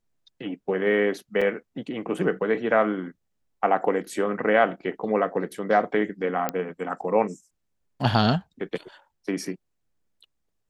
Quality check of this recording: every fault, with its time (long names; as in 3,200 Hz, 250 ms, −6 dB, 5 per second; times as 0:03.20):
0:01.41–0:01.42: drop-out 5.1 ms
0:06.49: click −10 dBFS